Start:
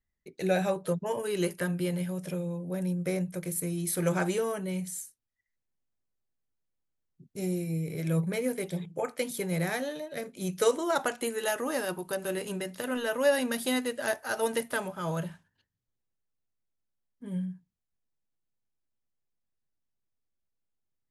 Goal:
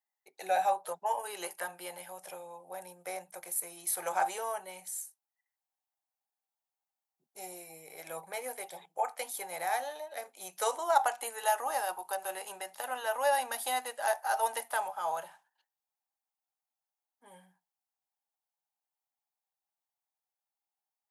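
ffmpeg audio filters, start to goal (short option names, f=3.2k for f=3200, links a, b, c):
-af "highpass=f=800:t=q:w=7.1,highshelf=f=8.7k:g=10,volume=-6dB"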